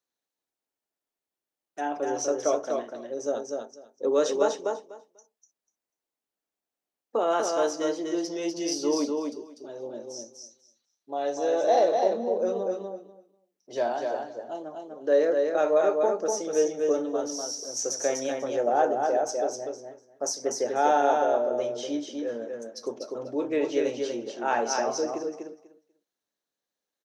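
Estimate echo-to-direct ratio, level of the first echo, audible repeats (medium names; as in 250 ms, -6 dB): -4.0 dB, -4.0 dB, 2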